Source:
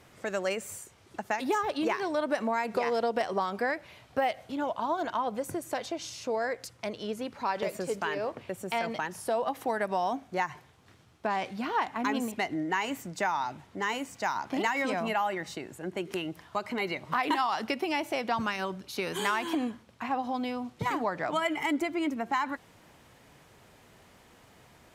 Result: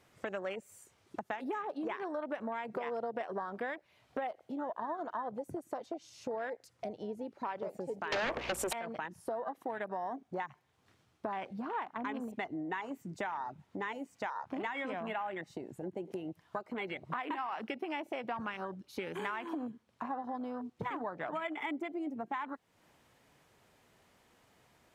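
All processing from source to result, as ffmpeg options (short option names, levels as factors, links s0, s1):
-filter_complex "[0:a]asettb=1/sr,asplit=3[s0][s1][s2];[s0]atrim=end=8.124[s3];[s1]atrim=start=8.12:end=8.73,asetpts=PTS-STARTPTS,afade=t=in:d=0.004:c=qsin,afade=t=out:st=0.606:d=0.004:c=qsin,highpass=370,aeval=exprs='val(0)+0.000891*(sin(2*PI*60*n/s)+sin(2*PI*2*60*n/s)/2+sin(2*PI*3*60*n/s)/3+sin(2*PI*4*60*n/s)/4+sin(2*PI*5*60*n/s)/5)':c=same,aeval=exprs='0.15*sin(PI/2*7.94*val(0)/0.15)':c=same[s4];[s2]atrim=start=8.726[s5];[s3][s4]acrossfade=d=0.004:c1=hsin:c2=qsin[s6];[s6][s5]acrossfade=d=0.004:c1=qsin:c2=hsin,afwtdn=0.0178,acompressor=threshold=0.00398:ratio=3,lowshelf=f=170:g=-4,volume=2.37"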